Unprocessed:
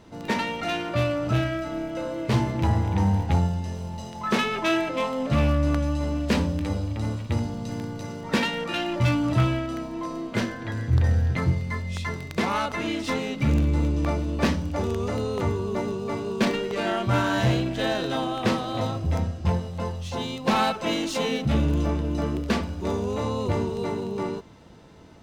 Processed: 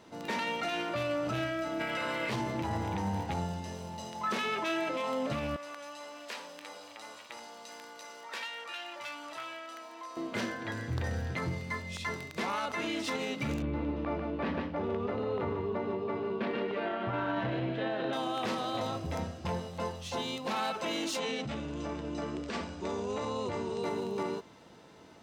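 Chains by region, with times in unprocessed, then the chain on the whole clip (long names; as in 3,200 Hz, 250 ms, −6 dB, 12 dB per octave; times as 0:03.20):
0:01.79–0:02.29: ceiling on every frequency bin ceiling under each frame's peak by 14 dB + parametric band 2,100 Hz +9.5 dB 1.3 octaves + notch filter 6,300 Hz, Q 7.6
0:05.56–0:10.17: high-pass filter 780 Hz + downward compressor 2 to 1, threshold −42 dBFS
0:13.62–0:18.13: high-frequency loss of the air 410 metres + single-tap delay 146 ms −7.5 dB
0:21.19–0:23.84: Chebyshev low-pass filter 8,700 Hz, order 8 + downward compressor, threshold −25 dBFS
whole clip: high-pass filter 340 Hz 6 dB per octave; brickwall limiter −23 dBFS; level −1.5 dB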